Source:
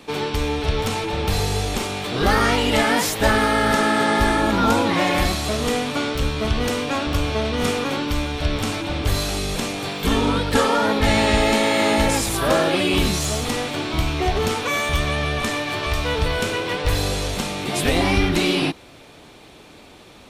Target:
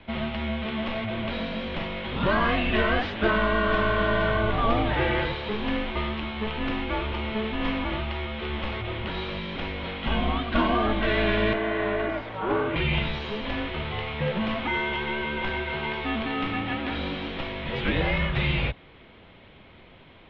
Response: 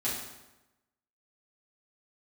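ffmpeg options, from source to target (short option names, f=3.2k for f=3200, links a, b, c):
-filter_complex "[0:a]asettb=1/sr,asplit=3[a][b][c];[a]atrim=end=11.534[d];[b]atrim=start=11.53:end=12.76,asetpts=PTS-STARTPTS,afade=t=in:d=0.004:c=qsin,afade=t=out:st=1.226:d=0.004:c=qsin,acrossover=split=490 2200:gain=0.224 1 0.224[e][f][g];[e][f][g]amix=inputs=3:normalize=0[h];[c]atrim=start=12.756[i];[d][h]acrossfade=d=0.004:c1=hsin:c2=qsin[j];[j][i]acrossfade=d=0.004:c1=qsin:c2=hsin,highpass=f=210:t=q:w=0.5412,highpass=f=210:t=q:w=1.307,lowpass=f=3.6k:t=q:w=0.5176,lowpass=f=3.6k:t=q:w=0.7071,lowpass=f=3.6k:t=q:w=1.932,afreqshift=-220,volume=-4dB"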